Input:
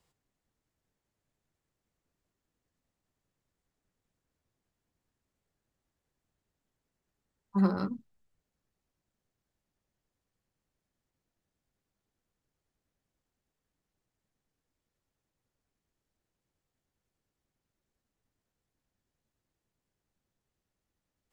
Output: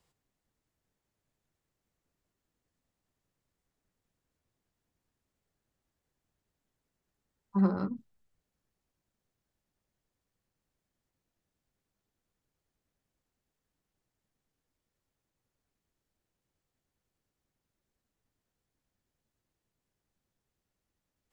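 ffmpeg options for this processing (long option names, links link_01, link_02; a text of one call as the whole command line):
ffmpeg -i in.wav -filter_complex "[0:a]asettb=1/sr,asplit=3[link_01][link_02][link_03];[link_01]atrim=end=7.574[link_04];[link_02]atrim=start=7.57:end=7.97,asetpts=PTS-STARTPTS,afade=type=in:duration=0.004:curve=qsin,afade=type=out:start_time=0.396:duration=0.004:curve=qsin,highshelf=frequency=2400:gain=-11.5[link_05];[link_03]atrim=start=7.966[link_06];[link_04][link_05]acrossfade=duration=0.004:curve1=hsin:curve2=qsin[link_07];[link_07][link_06]acrossfade=duration=0.004:curve1=qsin:curve2=hsin" out.wav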